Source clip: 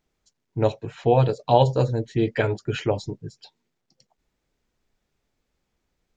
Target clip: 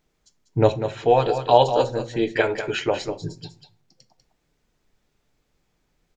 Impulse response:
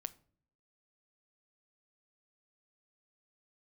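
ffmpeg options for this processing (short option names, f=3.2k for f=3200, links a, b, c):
-filter_complex "[0:a]asettb=1/sr,asplit=3[a][b][c];[a]atrim=end=0.734[d];[b]atrim=start=0.73:end=3.19,asetpts=PTS-STARTPTS,afade=t=in:d=0.004:c=qsin,afade=t=out:st=2.456:d=0.004:c=qsin,equalizer=f=110:t=o:w=2.4:g=-14.5[e];[c]atrim=start=3.186[f];[d][e]acrossfade=d=0.004:c1=hsin:c2=qsin[g];[g][f]acrossfade=d=0.004:c1=qsin:c2=hsin,aecho=1:1:195:0.355[h];[1:a]atrim=start_sample=2205[i];[h][i]afir=irnorm=-1:irlink=0,volume=7.5dB"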